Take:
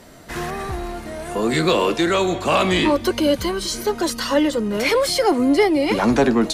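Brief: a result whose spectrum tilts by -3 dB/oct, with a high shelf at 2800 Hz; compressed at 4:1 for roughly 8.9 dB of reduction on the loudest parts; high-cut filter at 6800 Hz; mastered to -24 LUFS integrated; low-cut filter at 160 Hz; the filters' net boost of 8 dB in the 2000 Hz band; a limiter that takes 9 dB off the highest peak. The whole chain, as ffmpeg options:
-af "highpass=160,lowpass=6.8k,equalizer=f=2k:t=o:g=7,highshelf=f=2.8k:g=6.5,acompressor=threshold=-20dB:ratio=4,volume=1dB,alimiter=limit=-15.5dB:level=0:latency=1"

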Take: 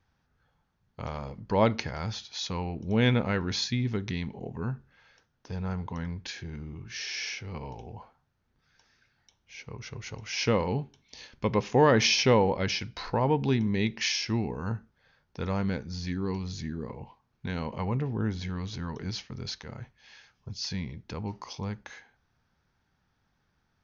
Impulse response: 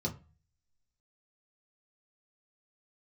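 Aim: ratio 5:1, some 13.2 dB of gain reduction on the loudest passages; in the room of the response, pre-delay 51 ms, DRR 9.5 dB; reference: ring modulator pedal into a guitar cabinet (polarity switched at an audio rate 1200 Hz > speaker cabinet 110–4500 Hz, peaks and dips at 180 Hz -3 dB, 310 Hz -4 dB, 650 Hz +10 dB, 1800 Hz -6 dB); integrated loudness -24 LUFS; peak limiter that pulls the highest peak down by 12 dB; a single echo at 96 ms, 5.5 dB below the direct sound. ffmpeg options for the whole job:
-filter_complex "[0:a]acompressor=threshold=-32dB:ratio=5,alimiter=level_in=6.5dB:limit=-24dB:level=0:latency=1,volume=-6.5dB,aecho=1:1:96:0.531,asplit=2[a][b];[1:a]atrim=start_sample=2205,adelay=51[c];[b][c]afir=irnorm=-1:irlink=0,volume=-12.5dB[d];[a][d]amix=inputs=2:normalize=0,aeval=exprs='val(0)*sgn(sin(2*PI*1200*n/s))':c=same,highpass=110,equalizer=f=180:t=q:w=4:g=-3,equalizer=f=310:t=q:w=4:g=-4,equalizer=f=650:t=q:w=4:g=10,equalizer=f=1.8k:t=q:w=4:g=-6,lowpass=f=4.5k:w=0.5412,lowpass=f=4.5k:w=1.3066,volume=11.5dB"

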